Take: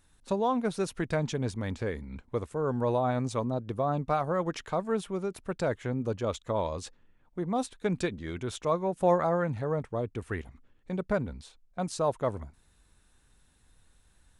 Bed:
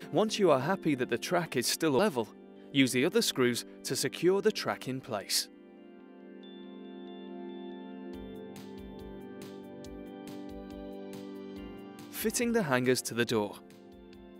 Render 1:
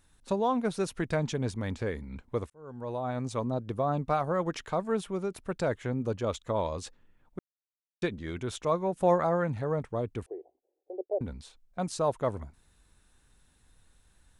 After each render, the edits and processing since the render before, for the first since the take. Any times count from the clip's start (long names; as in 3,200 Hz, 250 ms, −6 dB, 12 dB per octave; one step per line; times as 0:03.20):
0:02.50–0:03.53: fade in
0:07.39–0:08.02: silence
0:10.26–0:11.21: elliptic band-pass filter 350–750 Hz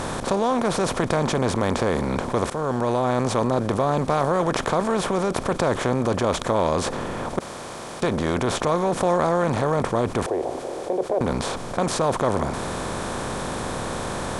compressor on every frequency bin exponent 0.4
envelope flattener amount 50%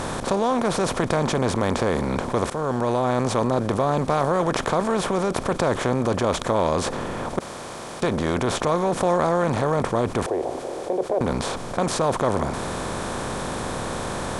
no processing that can be heard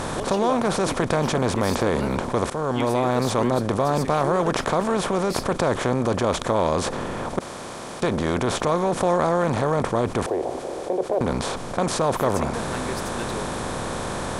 mix in bed −5.5 dB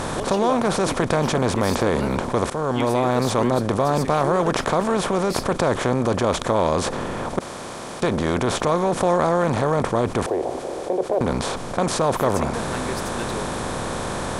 level +1.5 dB